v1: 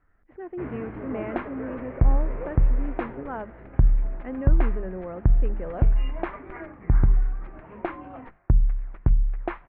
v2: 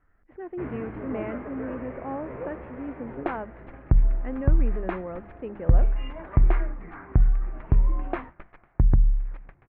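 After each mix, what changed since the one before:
second sound: entry +1.90 s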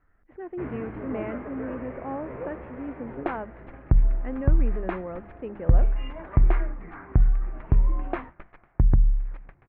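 none

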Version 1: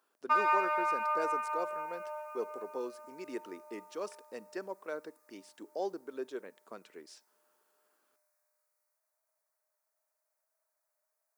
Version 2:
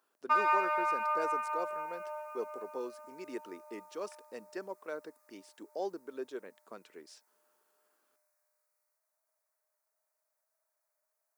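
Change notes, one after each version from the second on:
speech: send off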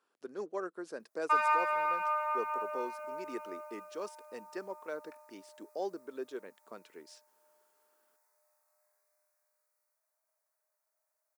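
background: entry +1.00 s

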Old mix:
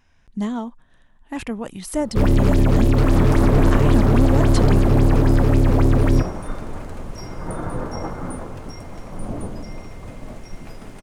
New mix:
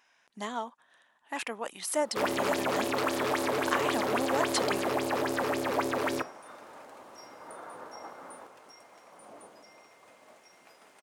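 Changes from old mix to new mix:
second sound -11.0 dB; master: add HPF 640 Hz 12 dB/oct

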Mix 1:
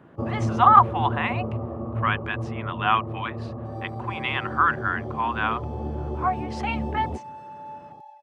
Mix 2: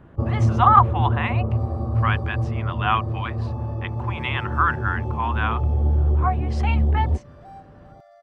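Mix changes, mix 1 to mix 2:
second sound: entry -2.15 s; master: remove HPF 170 Hz 12 dB/oct

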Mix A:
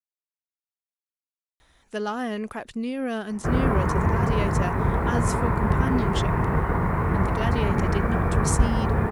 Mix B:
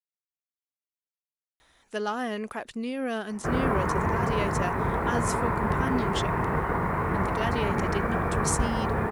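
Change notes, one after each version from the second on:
master: add low shelf 180 Hz -9.5 dB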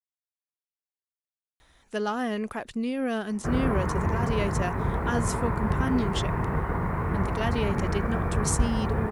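background -4.5 dB; master: add low shelf 180 Hz +9.5 dB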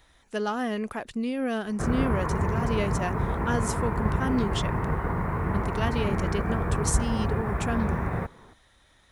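speech: entry -1.60 s; background: entry -1.65 s

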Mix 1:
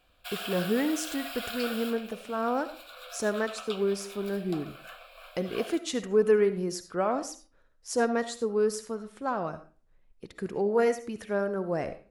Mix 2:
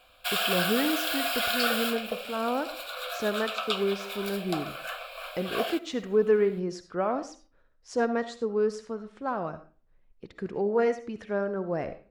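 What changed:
speech: add air absorption 120 m; background +10.0 dB

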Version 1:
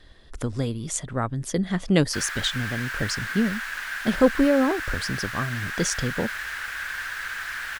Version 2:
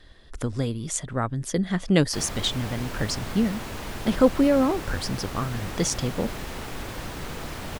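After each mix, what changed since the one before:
background: remove resonant high-pass 1600 Hz, resonance Q 6.9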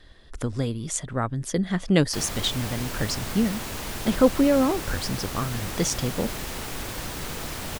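background: add high shelf 4100 Hz +9 dB

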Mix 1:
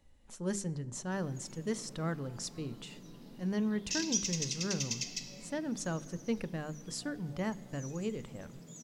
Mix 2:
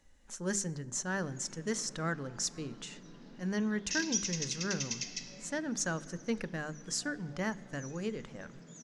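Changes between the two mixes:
background: add air absorption 140 m; master: add fifteen-band EQ 100 Hz -8 dB, 1600 Hz +8 dB, 6300 Hz +9 dB

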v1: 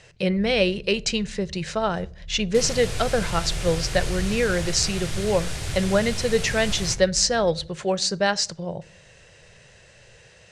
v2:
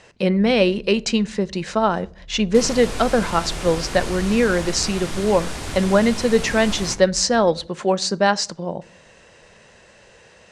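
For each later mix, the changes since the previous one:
first sound: send off; master: add ten-band EQ 125 Hz -8 dB, 250 Hz +12 dB, 1000 Hz +8 dB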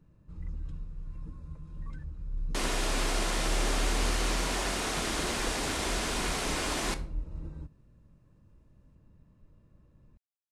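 speech: muted; first sound +5.5 dB; second sound: add HPF 190 Hz 24 dB/oct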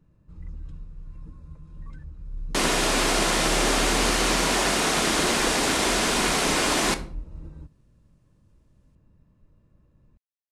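second sound +9.5 dB

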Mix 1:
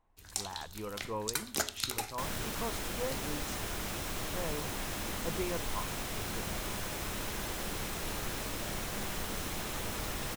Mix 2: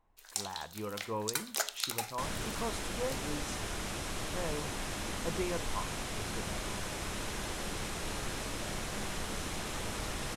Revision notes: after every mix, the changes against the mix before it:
speech: send +8.0 dB; first sound: add HPF 490 Hz 24 dB/oct; second sound: add LPF 11000 Hz 24 dB/oct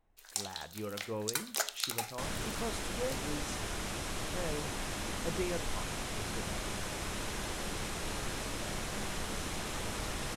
speech: add bell 1000 Hz -10 dB 0.41 oct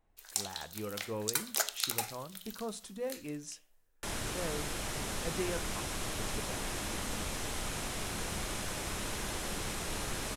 second sound: entry +1.85 s; master: add high shelf 9400 Hz +6.5 dB

